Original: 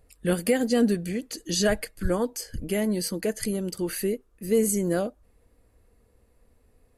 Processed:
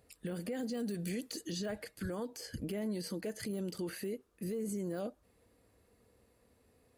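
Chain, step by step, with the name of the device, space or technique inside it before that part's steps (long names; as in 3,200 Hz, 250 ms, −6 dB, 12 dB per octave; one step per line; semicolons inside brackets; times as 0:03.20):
broadcast voice chain (high-pass filter 99 Hz 12 dB per octave; de-essing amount 95%; downward compressor, threshold −26 dBFS, peak gain reduction 9 dB; parametric band 4,100 Hz +3.5 dB 1.1 octaves; brickwall limiter −28.5 dBFS, peak gain reduction 10 dB)
0:00.77–0:01.41: high-shelf EQ 5,500 Hz +9 dB
level −2 dB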